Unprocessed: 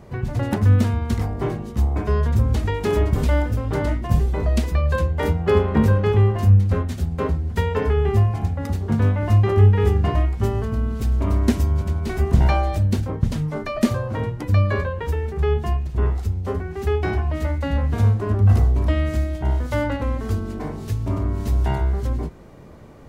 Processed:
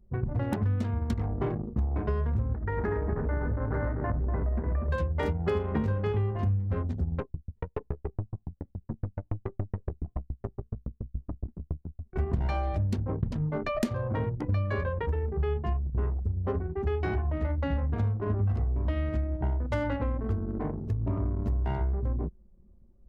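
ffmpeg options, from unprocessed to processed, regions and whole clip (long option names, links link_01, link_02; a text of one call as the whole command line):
ffmpeg -i in.wav -filter_complex "[0:a]asettb=1/sr,asplit=3[link_01][link_02][link_03];[link_01]atrim=end=2.534[link_04];[link_02]atrim=start=2.53:end=4.89,asetpts=PTS-STARTPTS,afade=type=in:duration=0.004:curve=qsin,afade=type=out:start_time=2.356:duration=0.004:curve=qsin,acompressor=threshold=-22dB:ratio=6:attack=3.2:release=140:knee=1:detection=peak,highshelf=frequency=2300:width_type=q:width=3:gain=-10.5,asplit=2[link_05][link_06];[link_06]adelay=243,lowpass=frequency=1300:poles=1,volume=-4dB,asplit=2[link_07][link_08];[link_08]adelay=243,lowpass=frequency=1300:poles=1,volume=0.49,asplit=2[link_09][link_10];[link_10]adelay=243,lowpass=frequency=1300:poles=1,volume=0.49,asplit=2[link_11][link_12];[link_12]adelay=243,lowpass=frequency=1300:poles=1,volume=0.49,asplit=2[link_13][link_14];[link_14]adelay=243,lowpass=frequency=1300:poles=1,volume=0.49,asplit=2[link_15][link_16];[link_16]adelay=243,lowpass=frequency=1300:poles=1,volume=0.49[link_17];[link_05][link_07][link_09][link_11][link_13][link_15][link_17]amix=inputs=7:normalize=0,atrim=end_sample=104076[link_18];[link_03]atrim=start=4.886[link_19];[link_04][link_18]acrossfade=duration=0.004:curve1=hsin:curve2=qsin[link_20];[link_20][link_19]acrossfade=duration=0.004:curve1=qsin:curve2=hsin,asettb=1/sr,asplit=3[link_21][link_22][link_23];[link_21]atrim=end=7.204[link_24];[link_22]atrim=start=7.2:end=12.16,asetpts=PTS-STARTPTS,afade=type=in:duration=0.004:curve=qsin,afade=type=out:start_time=4.956:duration=0.004:curve=qsin,equalizer=frequency=3500:width_type=o:width=0.63:gain=-8,aeval=exprs='(tanh(8.91*val(0)+0.55)-tanh(0.55))/8.91':channel_layout=same,aeval=exprs='val(0)*pow(10,-38*if(lt(mod(7.1*n/s,1),2*abs(7.1)/1000),1-mod(7.1*n/s,1)/(2*abs(7.1)/1000),(mod(7.1*n/s,1)-2*abs(7.1)/1000)/(1-2*abs(7.1)/1000))/20)':channel_layout=same[link_25];[link_23]atrim=start=12.156[link_26];[link_24][link_25]acrossfade=duration=0.004:curve1=hsin:curve2=qsin[link_27];[link_27][link_26]acrossfade=duration=0.004:curve1=qsin:curve2=hsin,anlmdn=63.1,acompressor=threshold=-23dB:ratio=6,volume=-2dB" out.wav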